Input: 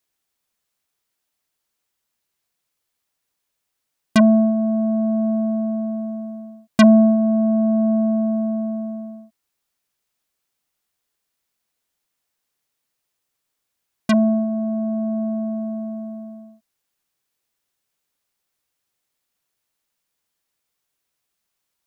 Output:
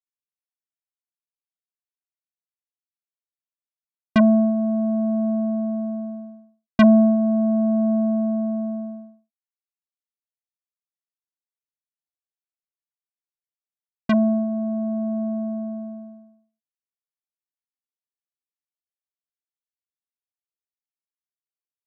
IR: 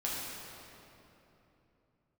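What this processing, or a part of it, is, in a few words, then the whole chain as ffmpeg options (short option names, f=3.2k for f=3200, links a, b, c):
hearing-loss simulation: -af "lowpass=3k,agate=range=-33dB:threshold=-25dB:ratio=3:detection=peak,volume=-2dB"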